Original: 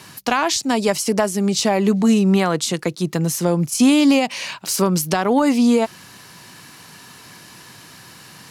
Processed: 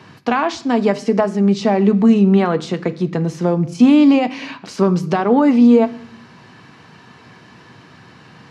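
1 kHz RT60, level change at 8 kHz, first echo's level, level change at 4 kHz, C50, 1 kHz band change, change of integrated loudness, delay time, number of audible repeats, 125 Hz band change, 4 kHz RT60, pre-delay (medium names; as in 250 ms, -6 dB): 0.65 s, under -15 dB, no echo, -7.0 dB, 17.0 dB, +1.5 dB, +3.0 dB, no echo, no echo, +2.5 dB, 0.85 s, 3 ms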